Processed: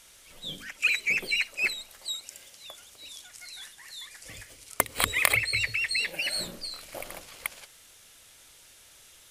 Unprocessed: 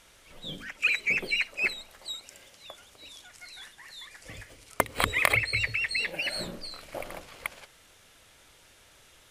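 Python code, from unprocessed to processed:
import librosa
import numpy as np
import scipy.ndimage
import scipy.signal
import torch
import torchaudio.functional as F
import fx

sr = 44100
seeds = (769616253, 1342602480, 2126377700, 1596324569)

y = fx.high_shelf(x, sr, hz=3500.0, db=12.0)
y = y * librosa.db_to_amplitude(-3.5)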